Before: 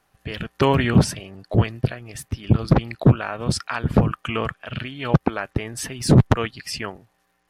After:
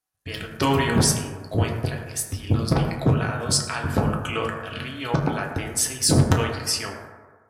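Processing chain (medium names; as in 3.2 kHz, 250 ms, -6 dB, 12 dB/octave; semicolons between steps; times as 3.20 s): gate with hold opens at -34 dBFS; tone controls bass -3 dB, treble +14 dB; reverberation RT60 1.5 s, pre-delay 5 ms, DRR 0 dB; trim -4.5 dB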